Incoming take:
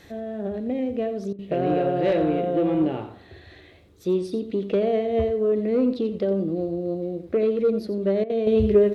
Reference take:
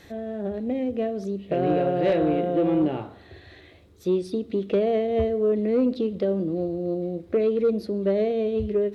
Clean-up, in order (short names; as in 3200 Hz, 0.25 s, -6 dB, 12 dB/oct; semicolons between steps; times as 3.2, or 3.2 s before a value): interpolate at 1.33/8.24, 56 ms; inverse comb 87 ms -12 dB; gain correction -7 dB, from 8.47